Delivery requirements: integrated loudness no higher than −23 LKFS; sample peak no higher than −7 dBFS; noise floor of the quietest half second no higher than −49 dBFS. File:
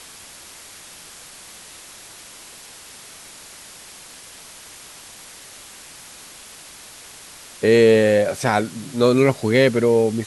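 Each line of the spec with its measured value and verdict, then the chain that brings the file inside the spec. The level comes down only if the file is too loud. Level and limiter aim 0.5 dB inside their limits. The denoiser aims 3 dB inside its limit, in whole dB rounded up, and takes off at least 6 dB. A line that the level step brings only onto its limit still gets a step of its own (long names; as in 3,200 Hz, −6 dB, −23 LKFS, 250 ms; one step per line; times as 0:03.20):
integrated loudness −17.0 LKFS: out of spec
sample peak −3.5 dBFS: out of spec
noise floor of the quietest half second −42 dBFS: out of spec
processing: broadband denoise 6 dB, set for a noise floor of −42 dBFS
level −6.5 dB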